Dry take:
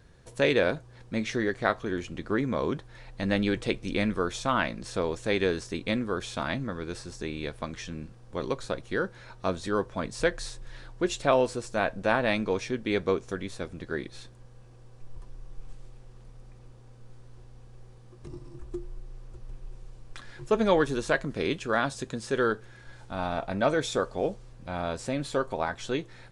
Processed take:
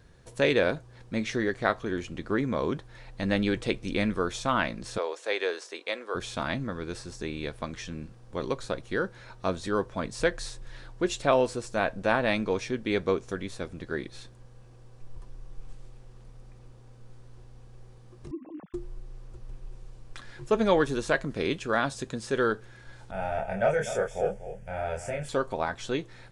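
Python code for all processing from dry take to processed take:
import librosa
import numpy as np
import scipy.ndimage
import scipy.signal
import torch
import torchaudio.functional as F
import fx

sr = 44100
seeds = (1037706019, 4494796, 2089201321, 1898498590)

y = fx.chain(x, sr, fx.highpass(hz=440.0, slope=24),
    fx.high_shelf(hz=9000.0, db=-7.0), at=(4.98, 6.15))
y = fx.chain(y, sr, fx.sine_speech(),
    fx.band_squash(depth_pct=70), at=(18.31, 18.74))
y = fx.chain(y, sr, fx.fixed_phaser(hz=1100.0, stages=6),
    fx.doubler(ms=26.0, db=-2.0),
    fx.echo_single(ms=246, db=-11.5), at=(23.11, 25.29))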